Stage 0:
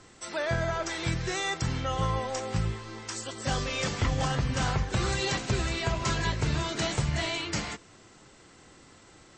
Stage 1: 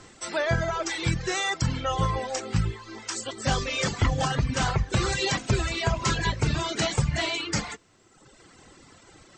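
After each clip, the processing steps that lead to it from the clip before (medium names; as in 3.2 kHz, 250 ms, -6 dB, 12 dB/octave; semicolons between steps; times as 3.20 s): reverb removal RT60 1.3 s; trim +5 dB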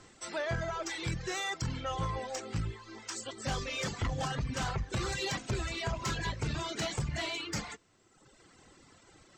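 saturation -19 dBFS, distortion -16 dB; trim -7 dB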